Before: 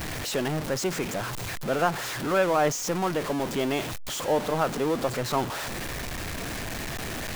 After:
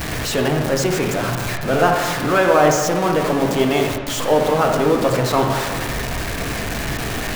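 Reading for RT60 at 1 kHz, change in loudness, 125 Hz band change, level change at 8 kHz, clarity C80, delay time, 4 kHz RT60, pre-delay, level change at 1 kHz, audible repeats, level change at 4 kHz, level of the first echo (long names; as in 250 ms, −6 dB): 1.6 s, +9.5 dB, +10.5 dB, +7.0 dB, 6.0 dB, no echo audible, 1.1 s, 4 ms, +9.5 dB, no echo audible, +8.0 dB, no echo audible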